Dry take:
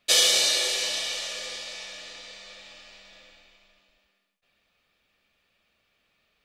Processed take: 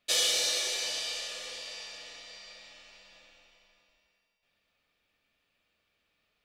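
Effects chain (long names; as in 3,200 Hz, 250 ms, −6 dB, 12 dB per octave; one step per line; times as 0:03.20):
in parallel at −10 dB: soft clipping −22.5 dBFS, distortion −9 dB
on the sum: feedback delay network reverb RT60 2.9 s, high-frequency decay 0.9×, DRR 6 dB
level −9 dB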